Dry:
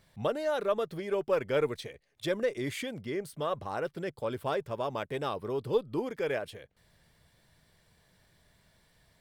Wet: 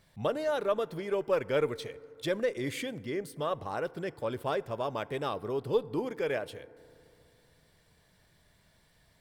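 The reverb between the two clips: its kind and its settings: FDN reverb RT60 2.8 s, high-frequency decay 0.3×, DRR 19 dB

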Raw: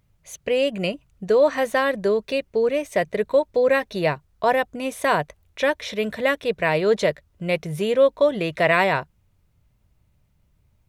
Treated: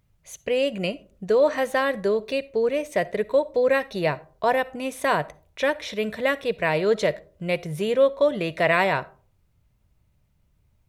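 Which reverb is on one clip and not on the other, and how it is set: digital reverb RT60 0.43 s, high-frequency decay 0.4×, pre-delay 15 ms, DRR 19 dB; gain -2 dB

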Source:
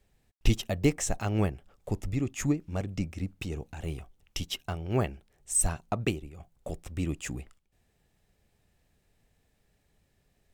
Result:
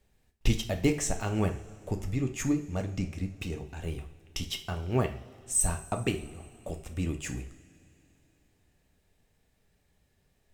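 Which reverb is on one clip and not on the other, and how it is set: two-slope reverb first 0.41 s, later 3.1 s, from -20 dB, DRR 4.5 dB; gain -1 dB

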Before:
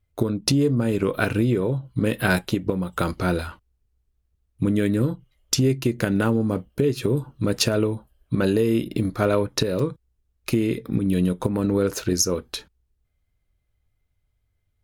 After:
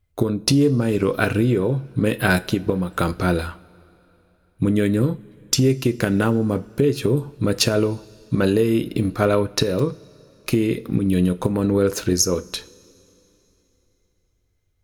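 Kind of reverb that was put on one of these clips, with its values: two-slope reverb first 0.37 s, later 3.4 s, from -18 dB, DRR 14.5 dB; gain +2.5 dB

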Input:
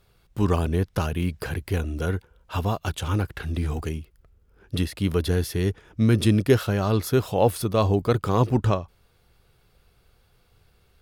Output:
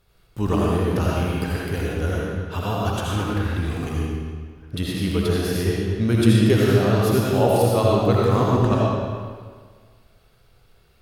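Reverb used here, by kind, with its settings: digital reverb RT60 1.7 s, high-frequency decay 0.85×, pre-delay 40 ms, DRR -5 dB; gain -2 dB

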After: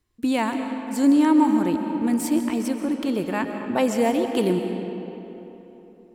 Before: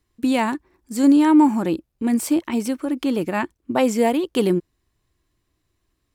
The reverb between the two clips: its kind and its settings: digital reverb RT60 3.5 s, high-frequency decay 0.6×, pre-delay 90 ms, DRR 5.5 dB; gain -3 dB

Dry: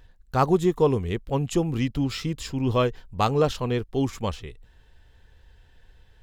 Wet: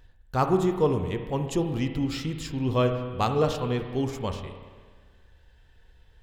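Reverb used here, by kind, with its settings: spring tank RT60 1.6 s, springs 32/53 ms, chirp 55 ms, DRR 6 dB; gain -3 dB

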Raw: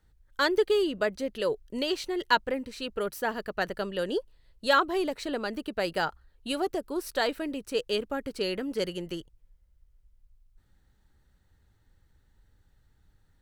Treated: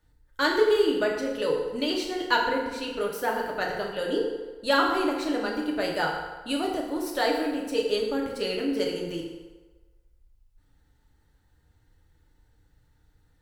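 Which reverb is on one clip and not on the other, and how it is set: FDN reverb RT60 1.3 s, low-frequency decay 0.75×, high-frequency decay 0.7×, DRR -2 dB; gain -1.5 dB

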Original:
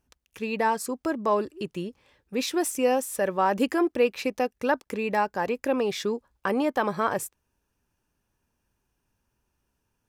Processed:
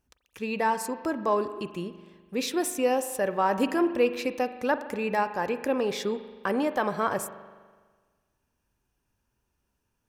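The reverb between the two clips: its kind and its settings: spring tank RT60 1.5 s, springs 41 ms, chirp 25 ms, DRR 11 dB; gain -1.5 dB

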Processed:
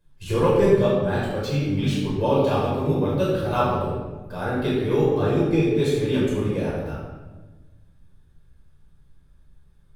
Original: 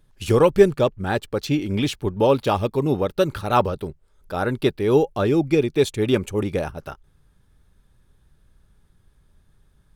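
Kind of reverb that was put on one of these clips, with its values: shoebox room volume 820 m³, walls mixed, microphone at 5.2 m; gain -12.5 dB

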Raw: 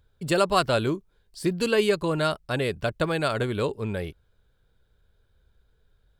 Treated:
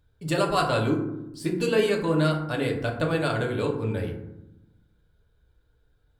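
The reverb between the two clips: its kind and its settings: FDN reverb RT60 0.87 s, low-frequency decay 1.6×, high-frequency decay 0.4×, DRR 0 dB; gain -4 dB

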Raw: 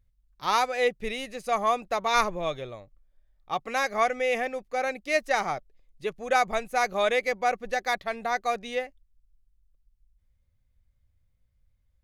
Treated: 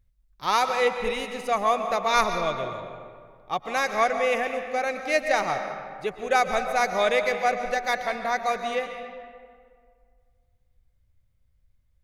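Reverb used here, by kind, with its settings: digital reverb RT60 2 s, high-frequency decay 0.6×, pre-delay 90 ms, DRR 6.5 dB; gain +1.5 dB

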